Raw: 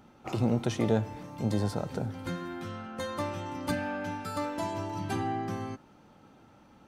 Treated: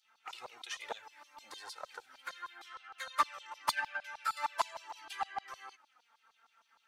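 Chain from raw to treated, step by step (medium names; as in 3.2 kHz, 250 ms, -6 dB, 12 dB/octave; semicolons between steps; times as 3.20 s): LFO high-pass saw down 6.5 Hz 910–4500 Hz; touch-sensitive flanger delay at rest 4.7 ms, full sweep at -26 dBFS; upward expansion 2.5:1, over -41 dBFS; trim +9 dB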